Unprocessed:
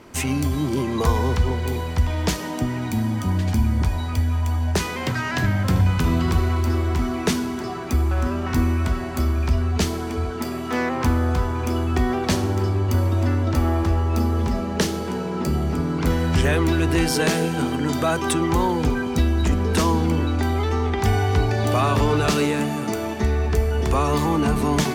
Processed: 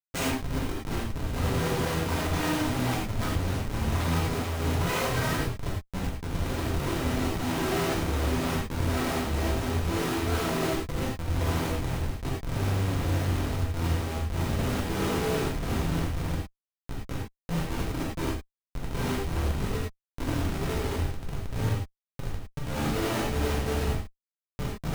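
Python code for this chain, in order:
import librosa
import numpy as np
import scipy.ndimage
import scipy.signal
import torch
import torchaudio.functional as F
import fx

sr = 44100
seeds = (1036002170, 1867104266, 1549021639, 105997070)

y = scipy.signal.sosfilt(scipy.signal.butter(2, 140.0, 'highpass', fs=sr, output='sos'), x)
y = fx.high_shelf(y, sr, hz=11000.0, db=-9.0)
y = fx.hum_notches(y, sr, base_hz=60, count=5)
y = fx.over_compress(y, sr, threshold_db=-30.0, ratio=-0.5)
y = fx.chorus_voices(y, sr, voices=4, hz=0.86, base_ms=15, depth_ms=3.5, mix_pct=65)
y = fx.schmitt(y, sr, flips_db=-32.0)
y = fx.rev_gated(y, sr, seeds[0], gate_ms=130, shape='flat', drr_db=-5.0)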